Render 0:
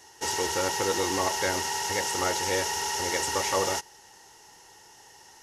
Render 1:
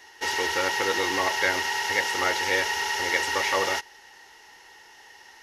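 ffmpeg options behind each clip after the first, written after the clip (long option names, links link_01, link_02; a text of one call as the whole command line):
ffmpeg -i in.wav -af "equalizer=frequency=125:width_type=o:width=1:gain=-10,equalizer=frequency=2000:width_type=o:width=1:gain=9,equalizer=frequency=4000:width_type=o:width=1:gain=4,equalizer=frequency=8000:width_type=o:width=1:gain=-9" out.wav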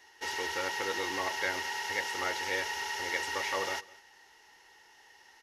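ffmpeg -i in.wav -af "aecho=1:1:206:0.075,volume=-8.5dB" out.wav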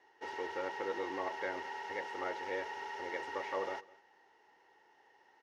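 ffmpeg -i in.wav -af "bandpass=frequency=460:width_type=q:width=0.65:csg=0,volume=-1dB" out.wav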